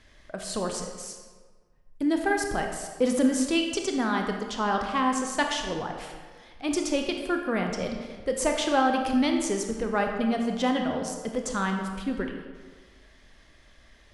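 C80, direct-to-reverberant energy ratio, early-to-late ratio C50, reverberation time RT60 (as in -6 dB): 6.0 dB, 3.0 dB, 4.5 dB, 1.5 s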